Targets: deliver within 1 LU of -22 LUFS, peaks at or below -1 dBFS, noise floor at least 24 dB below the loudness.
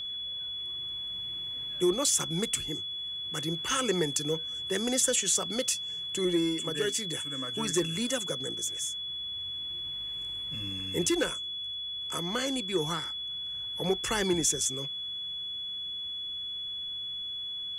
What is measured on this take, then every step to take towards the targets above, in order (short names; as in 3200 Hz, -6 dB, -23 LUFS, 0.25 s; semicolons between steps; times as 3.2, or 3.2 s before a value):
steady tone 3400 Hz; tone level -34 dBFS; loudness -30.5 LUFS; peak -13.5 dBFS; loudness target -22.0 LUFS
-> notch 3400 Hz, Q 30; gain +8.5 dB